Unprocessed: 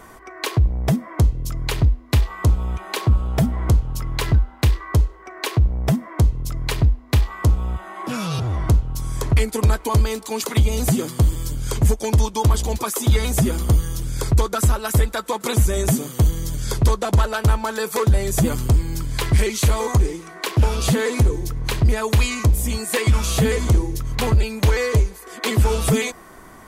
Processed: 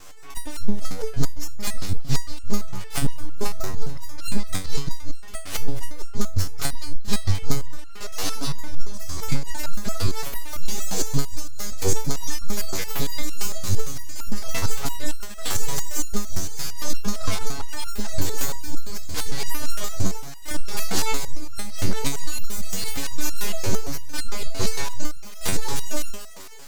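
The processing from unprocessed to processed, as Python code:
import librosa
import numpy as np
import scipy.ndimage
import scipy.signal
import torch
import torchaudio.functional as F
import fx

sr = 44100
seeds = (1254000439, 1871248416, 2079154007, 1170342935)

p1 = fx.local_reverse(x, sr, ms=116.0)
p2 = fx.band_shelf(p1, sr, hz=5400.0, db=12.5, octaves=1.1)
p3 = fx.rider(p2, sr, range_db=10, speed_s=2.0)
p4 = p2 + (p3 * librosa.db_to_amplitude(1.0))
p5 = np.abs(p4)
p6 = p5 + fx.echo_thinned(p5, sr, ms=218, feedback_pct=72, hz=220.0, wet_db=-16, dry=0)
y = fx.resonator_held(p6, sr, hz=8.8, low_hz=95.0, high_hz=1400.0)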